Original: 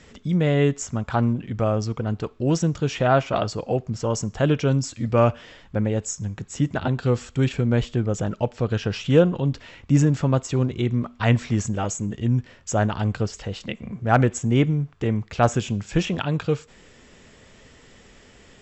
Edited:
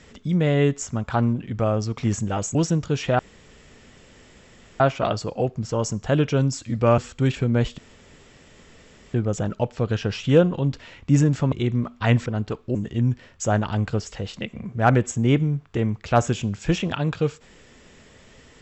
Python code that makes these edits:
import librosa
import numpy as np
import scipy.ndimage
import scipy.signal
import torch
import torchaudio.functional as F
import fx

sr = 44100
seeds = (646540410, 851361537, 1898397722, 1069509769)

y = fx.edit(x, sr, fx.swap(start_s=1.98, length_s=0.49, other_s=11.45, other_length_s=0.57),
    fx.insert_room_tone(at_s=3.11, length_s=1.61),
    fx.cut(start_s=5.29, length_s=1.86),
    fx.insert_room_tone(at_s=7.95, length_s=1.36),
    fx.cut(start_s=10.33, length_s=0.38), tone=tone)